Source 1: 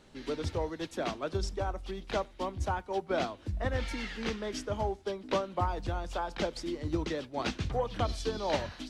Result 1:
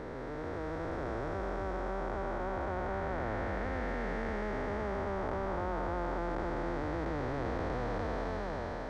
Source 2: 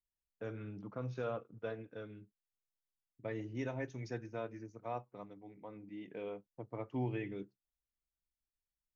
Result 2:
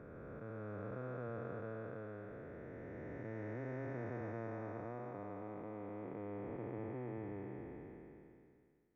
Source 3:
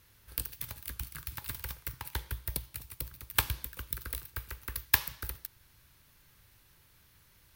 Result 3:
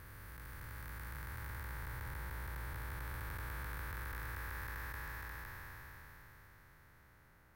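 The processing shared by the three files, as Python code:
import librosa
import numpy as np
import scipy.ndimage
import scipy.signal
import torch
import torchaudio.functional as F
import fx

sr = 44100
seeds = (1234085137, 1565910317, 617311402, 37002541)

y = fx.spec_blur(x, sr, span_ms=1470.0)
y = fx.curve_eq(y, sr, hz=(250.0, 1900.0, 2800.0), db=(0, 5, -11))
y = y * 10.0 ** (3.0 / 20.0)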